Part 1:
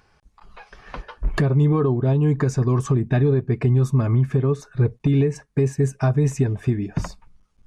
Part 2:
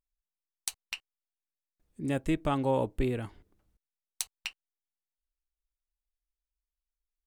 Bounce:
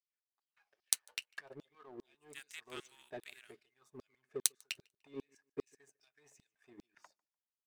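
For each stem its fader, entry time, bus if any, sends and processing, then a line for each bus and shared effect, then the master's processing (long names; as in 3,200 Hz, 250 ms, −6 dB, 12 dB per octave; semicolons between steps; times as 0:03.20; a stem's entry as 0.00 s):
−11.5 dB, 0.00 s, no send, echo send −21 dB, auto-filter high-pass saw down 2.5 Hz 350–4,900 Hz
+2.5 dB, 0.25 s, no send, echo send −23 dB, Butterworth high-pass 1,300 Hz 36 dB per octave; high-shelf EQ 3,900 Hz +5 dB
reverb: not used
echo: repeating echo 148 ms, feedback 37%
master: parametric band 1,100 Hz −8 dB 0.69 octaves; power curve on the samples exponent 1.4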